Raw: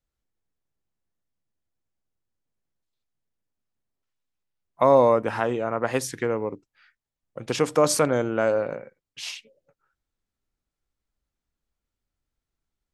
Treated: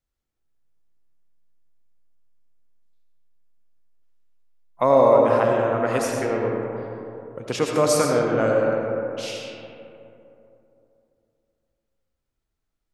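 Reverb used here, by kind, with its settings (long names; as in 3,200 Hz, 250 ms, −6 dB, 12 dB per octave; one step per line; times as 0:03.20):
comb and all-pass reverb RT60 3 s, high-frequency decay 0.35×, pre-delay 45 ms, DRR −0.5 dB
level −1 dB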